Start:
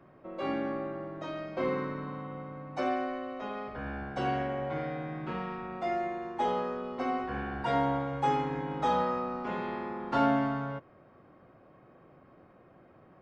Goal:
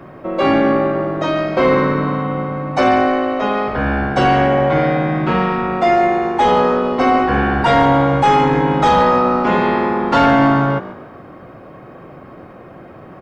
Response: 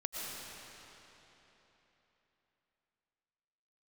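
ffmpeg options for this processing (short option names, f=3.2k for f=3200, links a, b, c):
-filter_complex "[0:a]apsyclip=27.5dB,asplit=2[a][b];[b]asplit=4[c][d][e][f];[c]adelay=143,afreqshift=53,volume=-16dB[g];[d]adelay=286,afreqshift=106,volume=-24dB[h];[e]adelay=429,afreqshift=159,volume=-31.9dB[i];[f]adelay=572,afreqshift=212,volume=-39.9dB[j];[g][h][i][j]amix=inputs=4:normalize=0[k];[a][k]amix=inputs=2:normalize=0,volume=-7.5dB"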